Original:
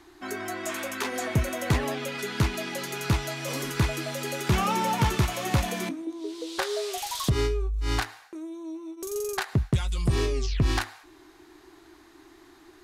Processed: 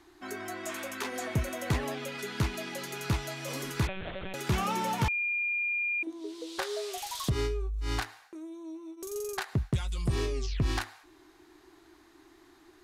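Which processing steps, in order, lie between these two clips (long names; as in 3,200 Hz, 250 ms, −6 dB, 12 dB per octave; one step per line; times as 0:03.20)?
0:03.87–0:04.34: one-pitch LPC vocoder at 8 kHz 190 Hz
0:05.08–0:06.03: beep over 2,410 Hz −22.5 dBFS
level −5 dB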